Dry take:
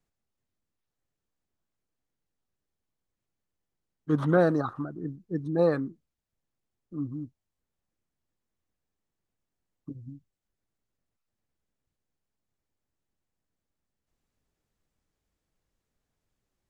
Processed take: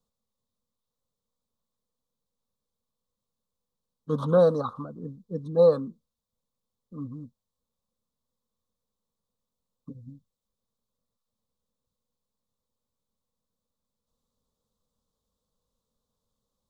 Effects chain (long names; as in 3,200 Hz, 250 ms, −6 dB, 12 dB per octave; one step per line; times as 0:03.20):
drawn EQ curve 150 Hz 0 dB, 230 Hz +7 dB, 340 Hz −10 dB, 490 Hz +10 dB, 710 Hz −3 dB, 1,100 Hz +8 dB, 2,100 Hz −25 dB, 3,600 Hz +7 dB, 5,200 Hz +3 dB
level −2 dB